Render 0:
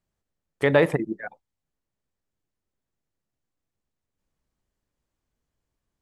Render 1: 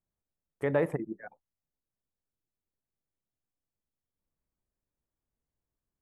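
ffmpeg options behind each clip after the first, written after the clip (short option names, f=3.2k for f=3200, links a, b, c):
-af "equalizer=f=4k:t=o:w=1.5:g=-14.5,volume=-8dB"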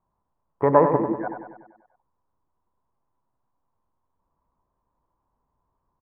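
-filter_complex "[0:a]asplit=2[a][b];[b]acompressor=threshold=-35dB:ratio=6,volume=-2dB[c];[a][c]amix=inputs=2:normalize=0,lowpass=f=1k:t=q:w=8,aecho=1:1:97|194|291|388|485|582|679:0.398|0.227|0.129|0.0737|0.042|0.024|0.0137,volume=5.5dB"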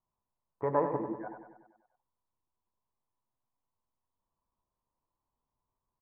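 -af "flanger=delay=8:depth=1.4:regen=-61:speed=0.52:shape=sinusoidal,volume=-8dB"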